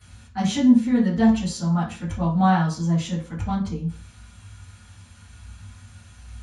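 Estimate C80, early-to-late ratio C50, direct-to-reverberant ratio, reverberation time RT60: 13.0 dB, 6.5 dB, -11.5 dB, 0.40 s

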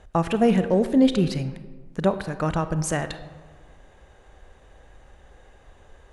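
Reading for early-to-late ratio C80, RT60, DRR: 13.5 dB, 1.5 s, 11.0 dB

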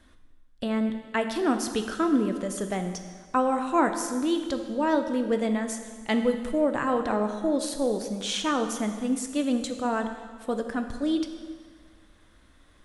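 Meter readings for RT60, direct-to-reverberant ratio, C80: 1.7 s, 6.0 dB, 9.5 dB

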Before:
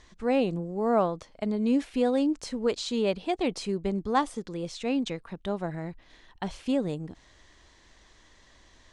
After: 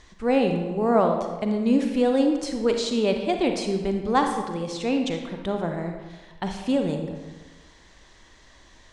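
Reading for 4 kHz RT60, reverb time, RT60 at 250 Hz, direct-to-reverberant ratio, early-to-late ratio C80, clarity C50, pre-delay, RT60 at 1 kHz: 0.85 s, 1.3 s, 1.3 s, 4.0 dB, 7.0 dB, 5.0 dB, 36 ms, 1.3 s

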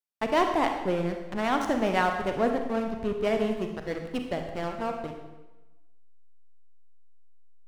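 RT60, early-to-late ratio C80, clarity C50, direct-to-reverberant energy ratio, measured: 1.1 s, 7.5 dB, 5.5 dB, 4.0 dB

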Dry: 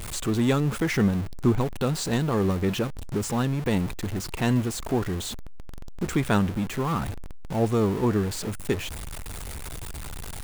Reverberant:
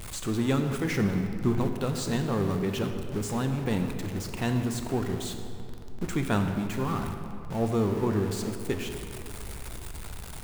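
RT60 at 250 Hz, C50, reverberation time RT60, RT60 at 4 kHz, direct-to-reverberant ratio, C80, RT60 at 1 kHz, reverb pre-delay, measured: 3.0 s, 6.5 dB, 2.7 s, 1.6 s, 5.5 dB, 7.0 dB, 2.6 s, 12 ms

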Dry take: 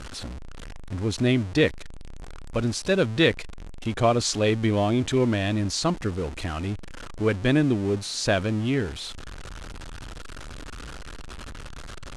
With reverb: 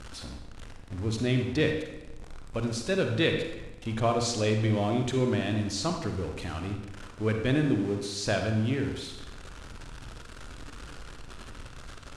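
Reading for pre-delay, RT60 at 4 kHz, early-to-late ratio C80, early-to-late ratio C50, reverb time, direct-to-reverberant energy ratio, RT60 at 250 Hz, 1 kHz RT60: 37 ms, 0.85 s, 7.5 dB, 5.0 dB, 1.1 s, 4.0 dB, 1.1 s, 1.1 s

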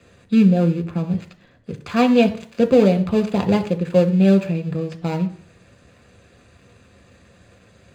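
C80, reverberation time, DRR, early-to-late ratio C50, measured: 18.0 dB, 0.50 s, 6.5 dB, 15.0 dB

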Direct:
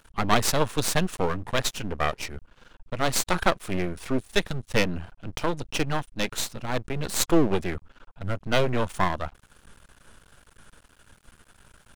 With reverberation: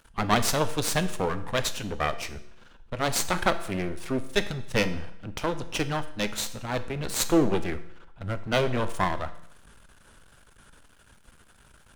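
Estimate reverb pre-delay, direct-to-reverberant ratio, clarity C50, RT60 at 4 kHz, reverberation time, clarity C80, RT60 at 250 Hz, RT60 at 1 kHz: 6 ms, 10.0 dB, 14.0 dB, 0.70 s, 0.75 s, 16.5 dB, 0.75 s, 0.75 s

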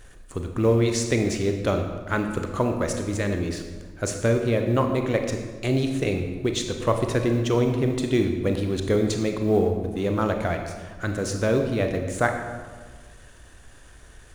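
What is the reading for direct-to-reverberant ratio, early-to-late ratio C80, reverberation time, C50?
4.5 dB, 7.5 dB, 1.5 s, 6.0 dB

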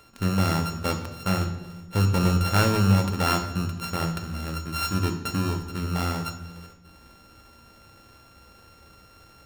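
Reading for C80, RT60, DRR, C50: 11.5 dB, 1.1 s, 5.0 dB, 9.0 dB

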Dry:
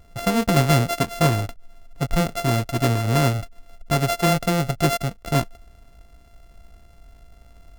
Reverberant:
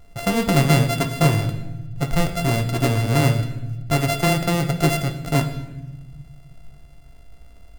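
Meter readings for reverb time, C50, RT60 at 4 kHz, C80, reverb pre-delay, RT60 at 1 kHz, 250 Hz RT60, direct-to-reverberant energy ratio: 1.0 s, 10.0 dB, 0.90 s, 11.5 dB, 7 ms, 0.90 s, 2.0 s, 6.0 dB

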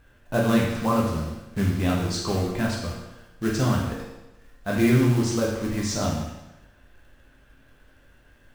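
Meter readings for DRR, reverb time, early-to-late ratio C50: -4.0 dB, 1.0 s, 2.5 dB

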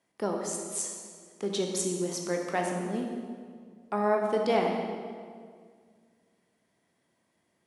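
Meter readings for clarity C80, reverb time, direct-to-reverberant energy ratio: 4.0 dB, 2.0 s, 1.0 dB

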